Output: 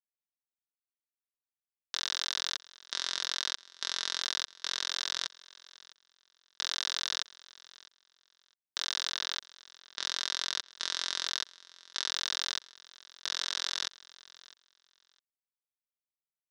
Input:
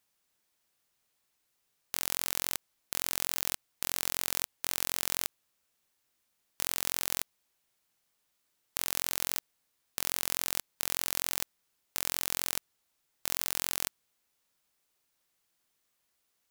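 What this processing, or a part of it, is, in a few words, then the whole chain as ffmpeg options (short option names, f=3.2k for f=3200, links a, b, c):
hand-held game console: -filter_complex "[0:a]asettb=1/sr,asplit=3[a][b][c];[a]atrim=end=9.114[d];[b]atrim=start=9.11:end=10.01,asetpts=PTS-STARTPTS,afade=t=in:d=0.004:c=qsin,afade=t=out:st=0.896:d=0.004:c=qsin,lowpass=f=7.4k:w=0.5412,lowpass=f=7.4k:w=1.3066[e];[c]atrim=start=10.006[f];[d][e]acrossfade=d=0.004:c1=hsin:c2=qsin[g];[g][f]acrossfade=d=0.004:c1=qsin:c2=hsin,acrusher=bits=3:mix=0:aa=0.000001,highpass=460,equalizer=f=500:t=q:w=4:g=-8,equalizer=f=760:t=q:w=4:g=-9,equalizer=f=1.6k:t=q:w=4:g=5,equalizer=f=2.4k:t=q:w=4:g=-8,equalizer=f=3.7k:t=q:w=4:g=10,equalizer=f=5.5k:t=q:w=4:g=6,lowpass=f=5.7k:w=0.5412,lowpass=f=5.7k:w=1.3066,aecho=1:1:5.1:0.38,aecho=1:1:657|1314:0.0841|0.0143"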